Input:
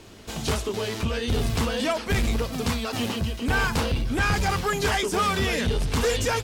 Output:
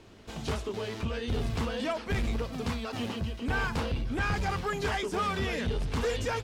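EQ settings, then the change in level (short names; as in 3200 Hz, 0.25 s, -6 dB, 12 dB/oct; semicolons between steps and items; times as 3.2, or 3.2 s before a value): LPF 3400 Hz 6 dB/oct; -6.0 dB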